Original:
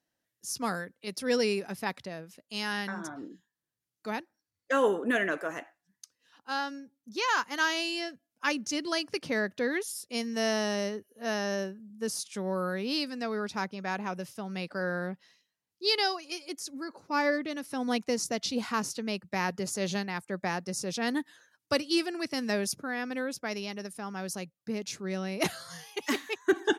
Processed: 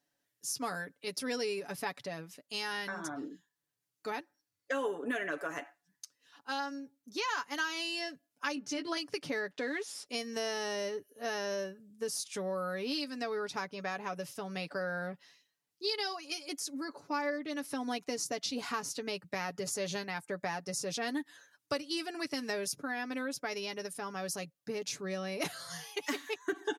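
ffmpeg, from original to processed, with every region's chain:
-filter_complex "[0:a]asettb=1/sr,asplit=3[s0][s1][s2];[s0]atrim=end=8.554[s3];[s1]atrim=start=8.55:end=8.97,asetpts=PTS-STARTPTS,afade=t=in:d=0.004:c=qsin,afade=t=out:st=0.416:d=0.004:c=qsin,bass=f=250:g=0,treble=f=4000:g=-9,asplit=2[s4][s5];[s5]adelay=15,volume=0.562[s6];[s4][s6]amix=inputs=2:normalize=0,atrim=end_sample=18522[s7];[s2]atrim=start=8.966[s8];[s3][s7]acrossfade=d=0.004:c1=hsin:c2=qsin[s9];[s9][s8]acrossfade=d=0.004:c1=qsin:c2=hsin,asettb=1/sr,asplit=3[s10][s11][s12];[s10]atrim=end=9.514[s13];[s11]atrim=start=9.51:end=10.06,asetpts=PTS-STARTPTS,afade=t=in:d=0.004:c=qsin,afade=t=out:st=0.546:d=0.004:c=qsin,acrusher=bits=9:dc=4:mix=0:aa=0.000001,highpass=200,lowpass=5800[s14];[s12]atrim=start=10.056[s15];[s13][s14]acrossfade=d=0.004:c1=hsin:c2=qsin[s16];[s16][s15]acrossfade=d=0.004:c1=qsin:c2=hsin,bass=f=250:g=-4,treble=f=4000:g=1,aecho=1:1:7:0.58,acompressor=threshold=0.02:ratio=3"

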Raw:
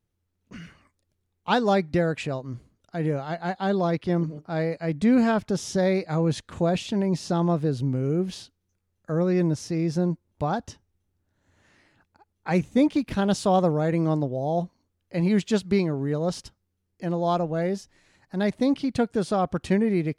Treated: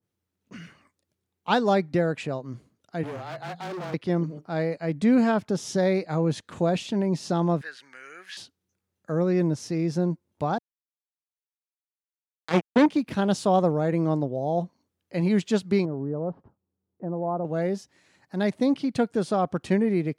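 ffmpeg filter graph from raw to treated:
-filter_complex "[0:a]asettb=1/sr,asplit=3[s0][s1][s2];[s0]atrim=end=3.034[s3];[s1]atrim=start=3.03:end=3.94,asetpts=PTS-STARTPTS,afade=t=in:d=0.004:c=qsin,afade=t=out:st=0.906:d=0.004:c=qsin,bandreject=f=50:t=h:w=6,bandreject=f=100:t=h:w=6,bandreject=f=150:t=h:w=6,bandreject=f=200:t=h:w=6,bandreject=f=250:t=h:w=6,afreqshift=-25,volume=39.8,asoftclip=hard,volume=0.0251[s4];[s2]atrim=start=3.936[s5];[s3][s4]acrossfade=d=0.004:c1=hsin:c2=qsin[s6];[s6][s5]acrossfade=d=0.004:c1=qsin:c2=hsin,asettb=1/sr,asplit=3[s7][s8][s9];[s7]atrim=end=7.614[s10];[s8]atrim=start=7.61:end=8.37,asetpts=PTS-STARTPTS,afade=t=in:d=0.004:c=qsin,afade=t=out:st=0.756:d=0.004:c=qsin,acrossover=split=4700[s11][s12];[s12]acompressor=threshold=0.00251:ratio=4:attack=1:release=60[s13];[s11][s13]amix=inputs=2:normalize=0,highpass=f=1700:t=q:w=5.6[s14];[s9]atrim=start=8.366[s15];[s10][s14]acrossfade=d=0.004:c1=hsin:c2=qsin[s16];[s16][s15]acrossfade=d=0.004:c1=qsin:c2=hsin,asettb=1/sr,asplit=3[s17][s18][s19];[s17]atrim=end=10.584[s20];[s18]atrim=start=10.58:end=12.86,asetpts=PTS-STARTPTS,afade=t=in:d=0.004:c=qsin,afade=t=out:st=2.276:d=0.004:c=qsin,aeval=exprs='val(0)+0.5*0.0266*sgn(val(0))':c=same,aemphasis=mode=reproduction:type=50fm,acrusher=bits=2:mix=0:aa=0.5[s21];[s19]atrim=start=12.856[s22];[s20][s21]acrossfade=d=0.004:c1=hsin:c2=qsin[s23];[s23][s22]acrossfade=d=0.004:c1=qsin:c2=hsin,asettb=1/sr,asplit=3[s24][s25][s26];[s24]atrim=end=15.854[s27];[s25]atrim=start=15.85:end=17.45,asetpts=PTS-STARTPTS,afade=t=in:d=0.004:c=qsin,afade=t=out:st=1.596:d=0.004:c=qsin,lowpass=f=1100:w=0.5412,lowpass=f=1100:w=1.3066,acompressor=threshold=0.0501:ratio=2:attack=3.2:release=140:knee=1:detection=peak[s28];[s26]atrim=start=17.446[s29];[s27][s28]acrossfade=d=0.004:c1=hsin:c2=qsin[s30];[s30][s29]acrossfade=d=0.004:c1=qsin:c2=hsin,highpass=130,adynamicequalizer=threshold=0.0126:dfrequency=1600:dqfactor=0.7:tfrequency=1600:tqfactor=0.7:attack=5:release=100:ratio=0.375:range=2:mode=cutabove:tftype=highshelf"

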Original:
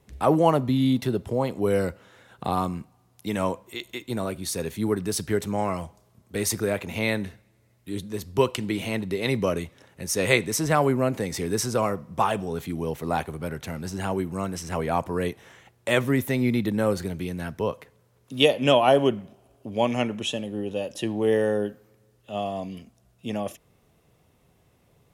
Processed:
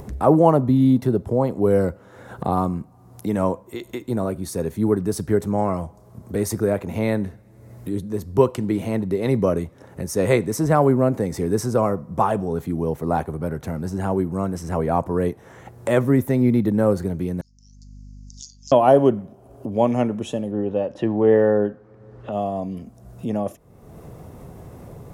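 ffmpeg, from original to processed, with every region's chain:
-filter_complex "[0:a]asettb=1/sr,asplit=3[s0][s1][s2];[s0]atrim=end=17.414[s3];[s1]atrim=start=17.41:end=18.72,asetpts=PTS-STARTPTS,afade=t=in:d=0.004:c=qsin,afade=t=out:st=1.306:d=0.004:c=qsin,asoftclip=type=hard:threshold=0.211,asuperpass=centerf=5700:order=8:qfactor=2.4,aeval=exprs='val(0)+0.000562*(sin(2*PI*50*n/s)+sin(2*PI*2*50*n/s)/2+sin(2*PI*3*50*n/s)/3+sin(2*PI*4*50*n/s)/4+sin(2*PI*5*50*n/s)/5)':c=same[s4];[s2]atrim=start=18.716[s5];[s3][s4]acrossfade=d=0.004:c1=hsin:c2=qsin[s6];[s6][s5]acrossfade=d=0.004:c1=qsin:c2=hsin,asettb=1/sr,asplit=3[s7][s8][s9];[s7]atrim=end=20.514[s10];[s8]atrim=start=20.51:end=22.32,asetpts=PTS-STARTPTS,afade=t=in:d=0.004:c=qsin,afade=t=out:st=1.806:d=0.004:c=qsin,lowpass=3500,equalizer=f=1400:w=0.63:g=5[s11];[s9]atrim=start=22.316[s12];[s10][s11]acrossfade=d=0.004:c1=hsin:c2=qsin[s13];[s13][s12]acrossfade=d=0.004:c1=qsin:c2=hsin,equalizer=f=2900:w=0.8:g=-13,acompressor=mode=upward:threshold=0.0316:ratio=2.5,highshelf=f=3700:g=-8.5,volume=2"

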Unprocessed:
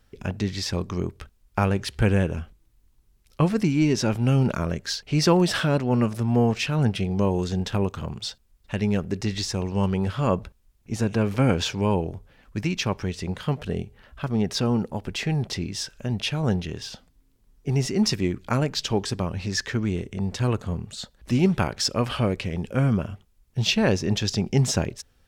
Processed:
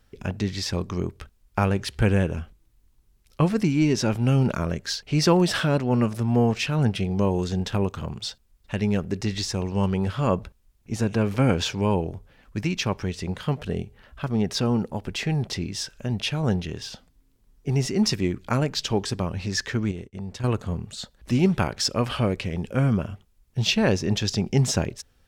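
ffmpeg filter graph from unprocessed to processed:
-filter_complex "[0:a]asettb=1/sr,asplit=3[s0][s1][s2];[s0]atrim=end=19.914[s3];[s1]atrim=start=19.91:end=20.44,asetpts=PTS-STARTPTS,afade=t=in:d=0.004:c=qsin,afade=t=out:st=0.526:d=0.004:c=qsin,agate=range=0.0224:threshold=0.0316:ratio=3:release=100:detection=peak,acompressor=threshold=0.0251:ratio=3:attack=3.2:release=140:knee=1:detection=peak[s4];[s2]atrim=start=20.436[s5];[s3][s4]acrossfade=d=0.004:c1=hsin:c2=qsin[s6];[s6][s5]acrossfade=d=0.004:c1=qsin:c2=hsin"

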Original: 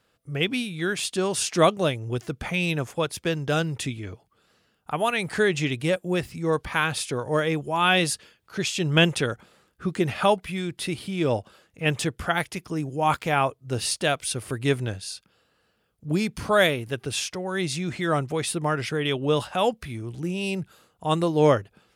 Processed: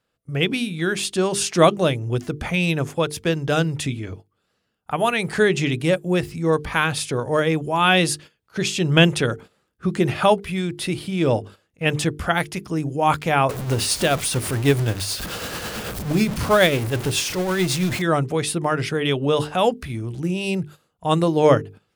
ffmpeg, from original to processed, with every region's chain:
-filter_complex "[0:a]asettb=1/sr,asplit=3[s0][s1][s2];[s0]atrim=end=13.494[s3];[s1]atrim=start=13.49:end=18.02,asetpts=PTS-STARTPTS,afade=t=in:d=0.004:c=qsin,afade=t=out:st=4.526:d=0.004:c=qsin,aeval=exprs='val(0)+0.5*0.0501*sgn(val(0))':c=same,acrusher=bits=5:mode=log:mix=0:aa=0.000001,tremolo=f=9.2:d=0.39[s4];[s2]atrim=start=18.016[s5];[s3][s4]acrossfade=d=0.004:c1=hsin:c2=qsin[s6];[s6][s5]acrossfade=d=0.004:c1=qsin:c2=hsin,lowshelf=f=450:g=3.5,bandreject=f=50:t=h:w=6,bandreject=f=100:t=h:w=6,bandreject=f=150:t=h:w=6,bandreject=f=200:t=h:w=6,bandreject=f=250:t=h:w=6,bandreject=f=300:t=h:w=6,bandreject=f=350:t=h:w=6,bandreject=f=400:t=h:w=6,bandreject=f=450:t=h:w=6,agate=range=0.282:threshold=0.00891:ratio=16:detection=peak,volume=1.41"

